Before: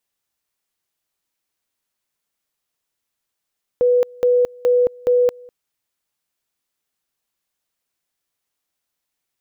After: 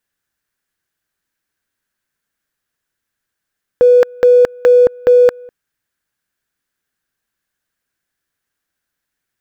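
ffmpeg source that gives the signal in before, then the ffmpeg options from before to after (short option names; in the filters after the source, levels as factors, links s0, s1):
-f lavfi -i "aevalsrc='pow(10,(-11.5-26*gte(mod(t,0.42),0.22))/20)*sin(2*PI*492*t)':d=1.68:s=44100"
-filter_complex "[0:a]equalizer=f=1600:w=2.8:g=13.5,asplit=2[s0][s1];[s1]adynamicsmooth=sensitivity=7.5:basefreq=550,volume=1.26[s2];[s0][s2]amix=inputs=2:normalize=0"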